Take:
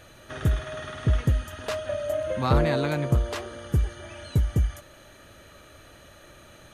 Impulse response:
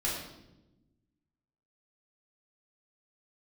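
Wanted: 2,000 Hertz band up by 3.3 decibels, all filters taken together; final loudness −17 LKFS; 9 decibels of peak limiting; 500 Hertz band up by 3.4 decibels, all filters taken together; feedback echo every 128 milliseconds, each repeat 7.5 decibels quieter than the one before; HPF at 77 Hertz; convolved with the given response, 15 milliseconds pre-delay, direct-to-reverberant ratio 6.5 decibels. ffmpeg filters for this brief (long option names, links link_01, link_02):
-filter_complex "[0:a]highpass=77,equalizer=frequency=500:width_type=o:gain=4,equalizer=frequency=2000:width_type=o:gain=4,alimiter=limit=-17dB:level=0:latency=1,aecho=1:1:128|256|384|512|640:0.422|0.177|0.0744|0.0312|0.0131,asplit=2[link_01][link_02];[1:a]atrim=start_sample=2205,adelay=15[link_03];[link_02][link_03]afir=irnorm=-1:irlink=0,volume=-13dB[link_04];[link_01][link_04]amix=inputs=2:normalize=0,volume=9.5dB"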